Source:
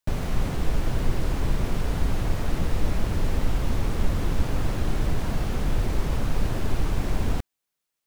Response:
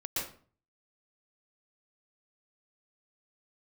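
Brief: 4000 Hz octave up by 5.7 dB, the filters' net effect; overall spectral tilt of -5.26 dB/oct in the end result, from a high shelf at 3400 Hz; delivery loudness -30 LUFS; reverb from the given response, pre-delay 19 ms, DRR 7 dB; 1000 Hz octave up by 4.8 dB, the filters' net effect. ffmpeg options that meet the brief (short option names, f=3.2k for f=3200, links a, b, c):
-filter_complex "[0:a]equalizer=f=1k:t=o:g=5.5,highshelf=f=3.4k:g=5,equalizer=f=4k:t=o:g=3.5,asplit=2[a][b];[1:a]atrim=start_sample=2205,adelay=19[c];[b][c]afir=irnorm=-1:irlink=0,volume=-11dB[d];[a][d]amix=inputs=2:normalize=0,volume=-3dB"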